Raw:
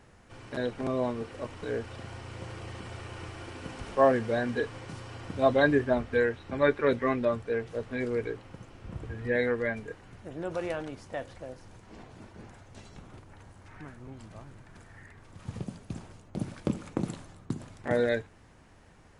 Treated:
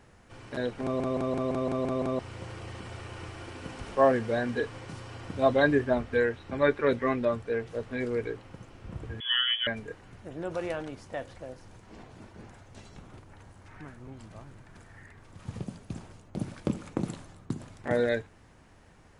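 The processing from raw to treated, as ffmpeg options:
-filter_complex "[0:a]asettb=1/sr,asplit=3[s0][s1][s2];[s0]atrim=end=9.204[s3];[s1]atrim=start=9.2:end=9.67,asetpts=PTS-STARTPTS,afade=t=in:d=0.004:c=qsin,afade=t=out:st=0.466:d=0.004:c=qsin,lowpass=f=3000:t=q:w=0.5098,lowpass=f=3000:t=q:w=0.6013,lowpass=f=3000:t=q:w=0.9,lowpass=f=3000:t=q:w=2.563,afreqshift=-3500[s4];[s2]atrim=start=9.666[s5];[s3][s4]acrossfade=d=0.004:c1=hsin:c2=qsin[s6];[s6][s5]acrossfade=d=0.004:c1=qsin:c2=hsin,asplit=9[s7][s8][s9][s10][s11][s12][s13][s14][s15];[s7]atrim=end=1.002[s16];[s8]atrim=start=0.828:end=1.002[s17];[s9]atrim=start=0.828:end=1.002[s18];[s10]atrim=start=0.828:end=1.002[s19];[s11]atrim=start=0.828:end=1.002[s20];[s12]atrim=start=0.828:end=1.002[s21];[s13]atrim=start=0.828:end=1.002[s22];[s14]atrim=start=0.828:end=1.002[s23];[s15]atrim=start=2.188[s24];[s16][s17]acrossfade=d=0.004:c1=hsin:c2=hsin[s25];[s25][s18]acrossfade=d=0.004:c1=hsin:c2=hsin[s26];[s26][s19]acrossfade=d=0.004:c1=hsin:c2=hsin[s27];[s27][s20]acrossfade=d=0.004:c1=hsin:c2=hsin[s28];[s28][s21]acrossfade=d=0.004:c1=hsin:c2=hsin[s29];[s29][s22]acrossfade=d=0.004:c1=hsin:c2=hsin[s30];[s30][s23]acrossfade=d=0.004:c1=hsin:c2=hsin[s31];[s31][s24]acrossfade=d=0.004:c1=hsin:c2=hsin"

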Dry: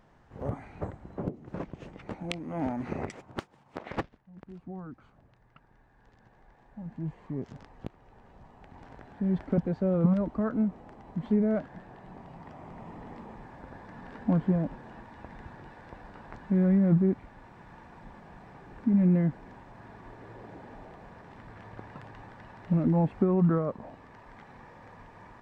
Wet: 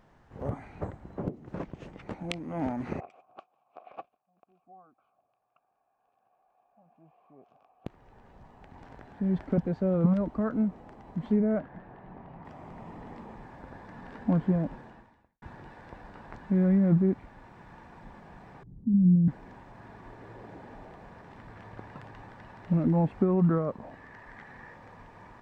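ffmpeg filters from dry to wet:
-filter_complex "[0:a]asettb=1/sr,asplit=3[s0][s1][s2];[s0]atrim=end=3.004[s3];[s1]atrim=start=3:end=7.86,asetpts=PTS-STARTPTS,afade=t=in:d=0.004:c=qsin,afade=t=out:st=4.856:d=0.004:c=qsin,asplit=3[s4][s5][s6];[s4]bandpass=f=730:t=q:w=8,volume=1[s7];[s5]bandpass=f=1090:t=q:w=8,volume=0.501[s8];[s6]bandpass=f=2440:t=q:w=8,volume=0.355[s9];[s7][s8][s9]amix=inputs=3:normalize=0[s10];[s2]atrim=start=7.856[s11];[s3][s10]acrossfade=d=0.004:c1=hsin:c2=qsin[s12];[s12][s11]acrossfade=d=0.004:c1=qsin:c2=hsin,asettb=1/sr,asplit=3[s13][s14][s15];[s13]atrim=end=11.404[s16];[s14]atrim=start=11.4:end=12.45,asetpts=PTS-STARTPTS,afade=t=in:d=0.004:c=qsin,afade=t=out:st=1.046:d=0.004:c=qsin,lowpass=2400[s17];[s15]atrim=start=12.446[s18];[s16][s17]acrossfade=d=0.004:c1=hsin:c2=qsin[s19];[s19][s18]acrossfade=d=0.004:c1=qsin:c2=hsin,asettb=1/sr,asplit=3[s20][s21][s22];[s20]atrim=end=18.634[s23];[s21]atrim=start=18.63:end=19.28,asetpts=PTS-STARTPTS,afade=t=in:d=0.004:c=qsin,afade=t=out:st=0.646:d=0.004:c=qsin,lowpass=f=160:t=q:w=1.6[s24];[s22]atrim=start=19.276[s25];[s23][s24]acrossfade=d=0.004:c1=hsin:c2=qsin[s26];[s26][s25]acrossfade=d=0.004:c1=qsin:c2=hsin,asettb=1/sr,asplit=3[s27][s28][s29];[s27]atrim=end=23.914[s30];[s28]atrim=start=23.91:end=24.76,asetpts=PTS-STARTPTS,afade=t=in:d=0.004:c=qsin,afade=t=out:st=0.846:d=0.004:c=qsin,equalizer=f=1800:t=o:w=0.38:g=10[s31];[s29]atrim=start=24.756[s32];[s30][s31]acrossfade=d=0.004:c1=hsin:c2=qsin[s33];[s33][s32]acrossfade=d=0.004:c1=qsin:c2=hsin,asplit=2[s34][s35];[s34]atrim=end=15.42,asetpts=PTS-STARTPTS,afade=t=out:st=14.79:d=0.63:c=qua[s36];[s35]atrim=start=15.42,asetpts=PTS-STARTPTS,afade=t=in:d=0.004:c=hsin[s37];[s36][s37]concat=n=2:v=0:a=1"

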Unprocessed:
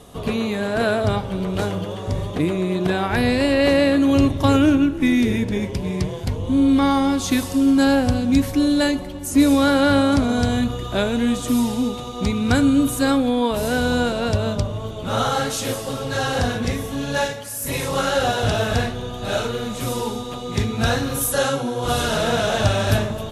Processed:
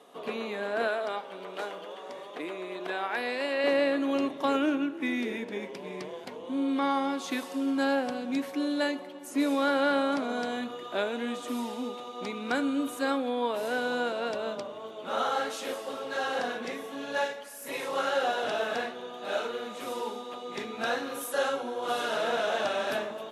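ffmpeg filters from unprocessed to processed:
-filter_complex "[0:a]asettb=1/sr,asplit=3[s0][s1][s2];[s0]atrim=end=0.874[s3];[s1]atrim=start=0.87:end=3.64,asetpts=PTS-STARTPTS,afade=t=in:d=0.004:c=qsin,afade=t=out:st=2.766:d=0.004:c=qsin,highpass=f=530:p=1[s4];[s2]atrim=start=3.636[s5];[s3][s4]acrossfade=d=0.004:c1=hsin:c2=qsin[s6];[s6][s5]acrossfade=d=0.004:c1=qsin:c2=hsin,highpass=f=190:w=0.5412,highpass=f=190:w=1.3066,bass=f=250:g=-15,treble=f=4000:g=-10,volume=0.473"

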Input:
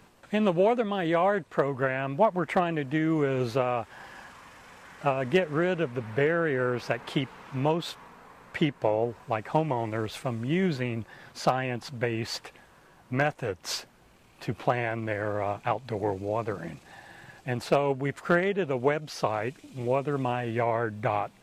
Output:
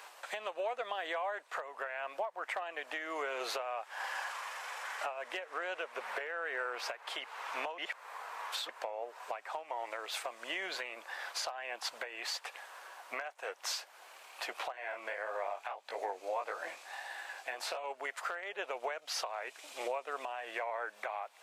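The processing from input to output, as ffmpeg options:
-filter_complex "[0:a]asettb=1/sr,asplit=3[s0][s1][s2];[s0]atrim=end=14.724[s3];[s1]atrim=start=14.72:end=17.84,asetpts=PTS-STARTPTS,afade=t=in:d=0.004:c=qsin,afade=t=out:st=3.116:d=0.004:c=qsin,flanger=delay=17:depth=6.3:speed=1.6[s4];[s2]atrim=start=17.836[s5];[s3][s4]acrossfade=d=0.004:c1=hsin:c2=qsin[s6];[s6][s5]acrossfade=d=0.004:c1=qsin:c2=hsin,asplit=3[s7][s8][s9];[s7]atrim=end=7.782[s10];[s8]atrim=start=7.778:end=8.692,asetpts=PTS-STARTPTS,areverse[s11];[s9]atrim=start=8.688[s12];[s10][s11]acrossfade=d=0.004:c1=hsin:c2=hsin[s13];[s13][s12]acrossfade=d=0.004:c1=hsin:c2=hsin,highpass=f=620:w=0.5412,highpass=f=620:w=1.3066,acompressor=threshold=0.01:ratio=6,alimiter=level_in=3.16:limit=0.0631:level=0:latency=1:release=459,volume=0.316,volume=2.51"

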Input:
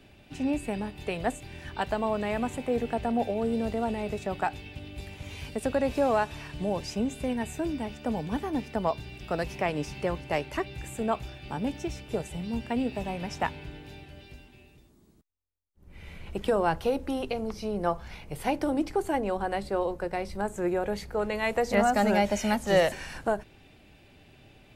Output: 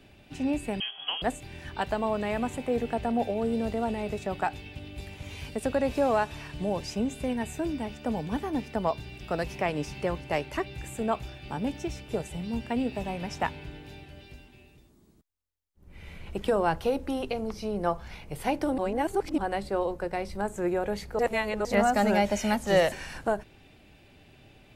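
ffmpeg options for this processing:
-filter_complex "[0:a]asettb=1/sr,asplit=3[s0][s1][s2];[s0]atrim=end=0.804[s3];[s1]atrim=start=0.8:end=1.22,asetpts=PTS-STARTPTS,afade=t=in:d=0.004:c=qsin,afade=t=out:st=0.416:d=0.004:c=qsin,lowpass=f=2900:t=q:w=0.5098,lowpass=f=2900:t=q:w=0.6013,lowpass=f=2900:t=q:w=0.9,lowpass=f=2900:t=q:w=2.563,afreqshift=-3400[s4];[s2]atrim=start=1.216[s5];[s3][s4]acrossfade=d=0.004:c1=hsin:c2=qsin[s6];[s6][s5]acrossfade=d=0.004:c1=qsin:c2=hsin,asplit=5[s7][s8][s9][s10][s11];[s7]atrim=end=18.782[s12];[s8]atrim=start=18.778:end=19.382,asetpts=PTS-STARTPTS,areverse[s13];[s9]atrim=start=19.378:end=21.192[s14];[s10]atrim=start=21.188:end=21.652,asetpts=PTS-STARTPTS,areverse[s15];[s11]atrim=start=21.648[s16];[s12][s13]acrossfade=d=0.004:c1=hsin:c2=hsin[s17];[s17][s14]acrossfade=d=0.004:c1=hsin:c2=hsin[s18];[s18][s15]acrossfade=d=0.004:c1=hsin:c2=hsin[s19];[s19][s16]acrossfade=d=0.004:c1=hsin:c2=hsin"

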